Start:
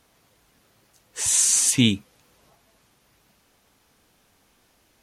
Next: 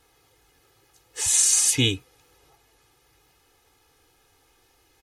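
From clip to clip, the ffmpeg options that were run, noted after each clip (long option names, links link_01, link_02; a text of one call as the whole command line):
ffmpeg -i in.wav -af "aecho=1:1:2.4:0.95,volume=-2.5dB" out.wav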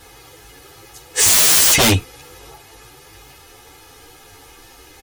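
ffmpeg -i in.wav -filter_complex "[0:a]aeval=exprs='0.422*sin(PI/2*6.31*val(0)/0.422)':channel_layout=same,asplit=2[link_01][link_02];[link_02]adelay=9.7,afreqshift=2.6[link_03];[link_01][link_03]amix=inputs=2:normalize=1,volume=1.5dB" out.wav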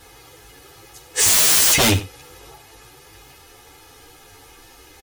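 ffmpeg -i in.wav -af "aecho=1:1:90:0.158,volume=-2.5dB" out.wav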